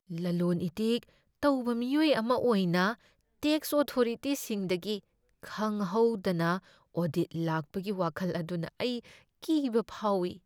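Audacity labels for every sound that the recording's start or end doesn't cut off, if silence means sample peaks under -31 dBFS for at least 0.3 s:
1.430000	2.920000	sound
3.430000	4.970000	sound
5.540000	6.570000	sound
6.970000	8.980000	sound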